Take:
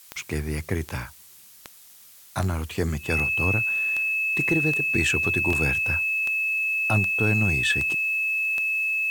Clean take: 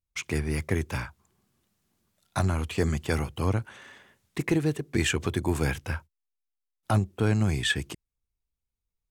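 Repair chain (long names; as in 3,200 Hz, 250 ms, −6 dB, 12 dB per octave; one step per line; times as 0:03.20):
click removal
notch filter 2,600 Hz, Q 30
repair the gap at 0:05.53, 2 ms
noise reduction from a noise print 30 dB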